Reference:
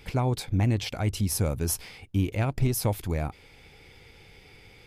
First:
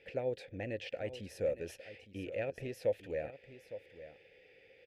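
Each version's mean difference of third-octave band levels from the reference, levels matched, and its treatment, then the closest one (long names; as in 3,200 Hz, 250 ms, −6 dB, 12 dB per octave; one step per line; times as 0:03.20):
7.0 dB: formant filter e
low-shelf EQ 80 Hz +9 dB
single-tap delay 860 ms −13.5 dB
level +3.5 dB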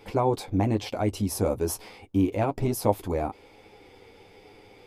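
4.0 dB: low-shelf EQ 140 Hz −3.5 dB
flanger 1.1 Hz, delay 9.4 ms, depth 1.2 ms, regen −22%
flat-topped bell 510 Hz +10 dB 2.6 octaves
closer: second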